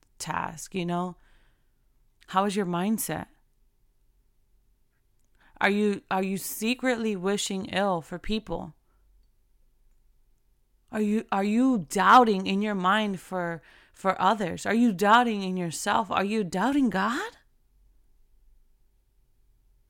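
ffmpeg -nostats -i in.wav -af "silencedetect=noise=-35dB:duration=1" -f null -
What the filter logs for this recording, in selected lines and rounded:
silence_start: 1.11
silence_end: 2.23 | silence_duration: 1.11
silence_start: 3.23
silence_end: 5.61 | silence_duration: 2.38
silence_start: 8.68
silence_end: 10.93 | silence_duration: 2.25
silence_start: 17.29
silence_end: 19.90 | silence_duration: 2.61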